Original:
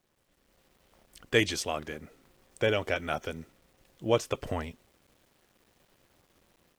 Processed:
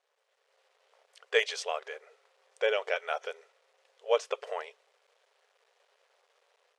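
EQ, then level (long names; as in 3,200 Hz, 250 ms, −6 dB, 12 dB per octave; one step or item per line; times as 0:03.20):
linear-phase brick-wall band-pass 400–12,000 Hz
high-frequency loss of the air 73 metres
0.0 dB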